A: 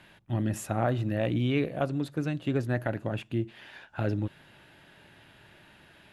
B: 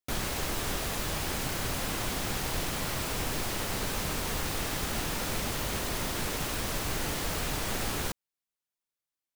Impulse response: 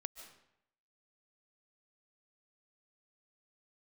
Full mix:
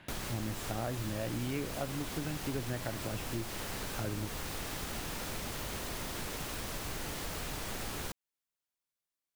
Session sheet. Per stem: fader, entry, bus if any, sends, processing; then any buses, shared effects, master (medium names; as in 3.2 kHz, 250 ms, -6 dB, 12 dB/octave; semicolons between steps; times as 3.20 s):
0.0 dB, 0.00 s, no send, treble shelf 6.9 kHz -10 dB
-1.5 dB, 0.00 s, no send, none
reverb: none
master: compression 2:1, threshold -40 dBFS, peak gain reduction 10.5 dB